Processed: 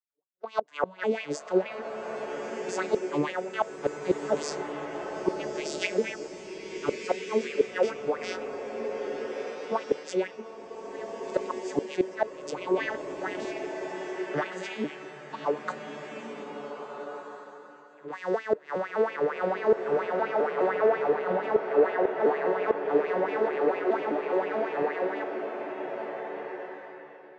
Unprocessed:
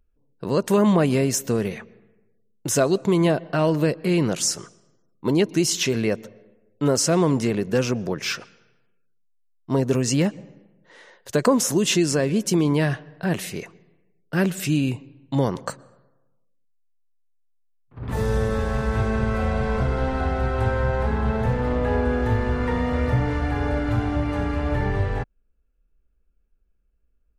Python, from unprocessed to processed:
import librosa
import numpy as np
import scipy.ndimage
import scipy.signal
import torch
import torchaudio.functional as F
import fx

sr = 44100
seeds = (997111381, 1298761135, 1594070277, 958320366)

y = fx.vocoder_arp(x, sr, chord='major triad', root=50, every_ms=206)
y = fx.filter_lfo_highpass(y, sr, shape='sine', hz=4.3, low_hz=400.0, high_hz=2600.0, q=4.8)
y = fx.gate_flip(y, sr, shuts_db=-12.0, range_db=-25)
y = fx.noise_reduce_blind(y, sr, reduce_db=11)
y = fx.rev_bloom(y, sr, seeds[0], attack_ms=1610, drr_db=4.0)